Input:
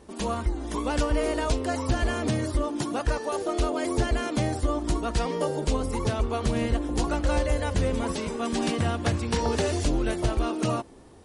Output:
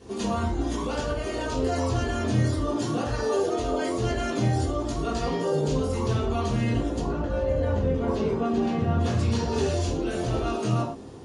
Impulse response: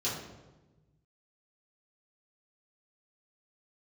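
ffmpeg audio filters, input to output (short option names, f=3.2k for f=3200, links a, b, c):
-filter_complex "[0:a]asplit=3[a][b][c];[a]afade=t=out:st=6.98:d=0.02[d];[b]lowpass=f=1.1k:p=1,afade=t=in:st=6.98:d=0.02,afade=t=out:st=8.98:d=0.02[e];[c]afade=t=in:st=8.98:d=0.02[f];[d][e][f]amix=inputs=3:normalize=0,alimiter=level_in=2.5dB:limit=-24dB:level=0:latency=1:release=14,volume=-2.5dB[g];[1:a]atrim=start_sample=2205,atrim=end_sample=6174[h];[g][h]afir=irnorm=-1:irlink=0"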